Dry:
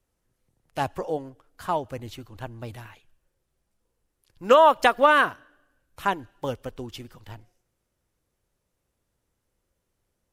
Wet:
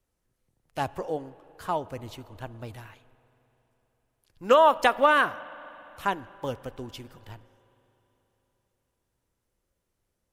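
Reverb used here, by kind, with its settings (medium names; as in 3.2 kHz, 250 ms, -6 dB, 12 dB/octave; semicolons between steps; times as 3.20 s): spring tank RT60 3.7 s, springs 39/54 ms, chirp 50 ms, DRR 18 dB; trim -2.5 dB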